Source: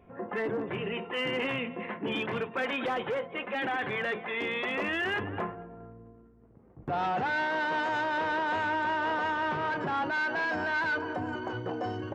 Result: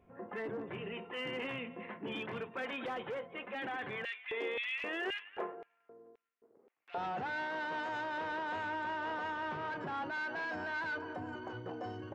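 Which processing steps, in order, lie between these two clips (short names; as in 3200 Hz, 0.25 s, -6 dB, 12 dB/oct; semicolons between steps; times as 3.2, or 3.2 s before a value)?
4.05–6.98 LFO high-pass square 1.9 Hz 420–2500 Hz; gain -8.5 dB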